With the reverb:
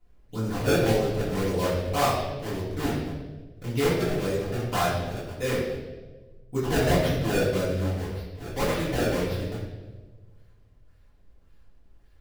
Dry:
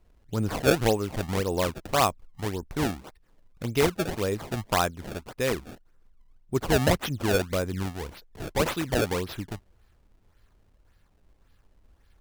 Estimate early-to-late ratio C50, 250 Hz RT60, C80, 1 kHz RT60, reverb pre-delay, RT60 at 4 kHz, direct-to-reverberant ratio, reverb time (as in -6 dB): 1.0 dB, 1.6 s, 4.0 dB, 1.1 s, 4 ms, 1.0 s, -11.0 dB, 1.3 s